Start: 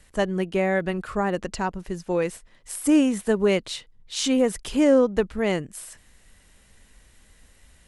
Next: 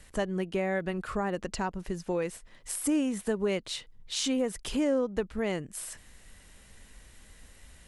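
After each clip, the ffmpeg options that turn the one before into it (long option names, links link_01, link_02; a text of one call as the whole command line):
ffmpeg -i in.wav -af "acompressor=threshold=-35dB:ratio=2,volume=1.5dB" out.wav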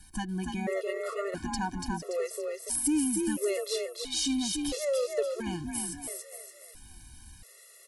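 ffmpeg -i in.wav -filter_complex "[0:a]aexciter=amount=2.4:drive=3.7:freq=4200,asplit=2[link_01][link_02];[link_02]asplit=5[link_03][link_04][link_05][link_06][link_07];[link_03]adelay=287,afreqshift=32,volume=-4dB[link_08];[link_04]adelay=574,afreqshift=64,volume=-11.5dB[link_09];[link_05]adelay=861,afreqshift=96,volume=-19.1dB[link_10];[link_06]adelay=1148,afreqshift=128,volume=-26.6dB[link_11];[link_07]adelay=1435,afreqshift=160,volume=-34.1dB[link_12];[link_08][link_09][link_10][link_11][link_12]amix=inputs=5:normalize=0[link_13];[link_01][link_13]amix=inputs=2:normalize=0,afftfilt=real='re*gt(sin(2*PI*0.74*pts/sr)*(1-2*mod(floor(b*sr/1024/360),2)),0)':imag='im*gt(sin(2*PI*0.74*pts/sr)*(1-2*mod(floor(b*sr/1024/360),2)),0)':win_size=1024:overlap=0.75" out.wav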